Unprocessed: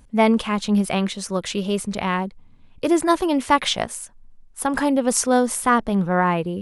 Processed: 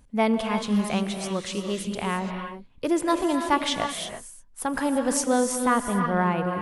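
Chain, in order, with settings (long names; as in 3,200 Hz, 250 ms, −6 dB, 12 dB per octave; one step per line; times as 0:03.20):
reverb whose tail is shaped and stops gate 370 ms rising, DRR 5 dB
level −5.5 dB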